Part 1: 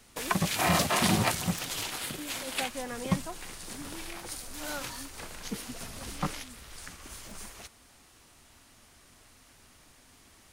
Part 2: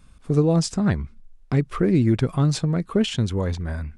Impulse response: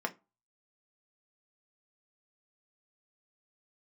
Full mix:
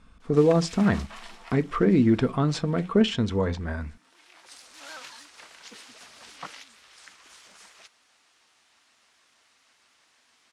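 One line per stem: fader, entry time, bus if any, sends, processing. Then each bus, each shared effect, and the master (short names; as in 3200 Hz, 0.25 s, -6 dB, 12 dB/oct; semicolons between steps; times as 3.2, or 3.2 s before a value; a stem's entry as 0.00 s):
-1.5 dB, 0.20 s, send -23 dB, HPF 1300 Hz 6 dB/oct; shaped vibrato square 6.4 Hz, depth 100 cents; auto duck -20 dB, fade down 1.45 s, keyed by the second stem
-3.5 dB, 0.00 s, send -6.5 dB, dry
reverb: on, RT60 0.25 s, pre-delay 3 ms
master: LPF 5900 Hz 12 dB/oct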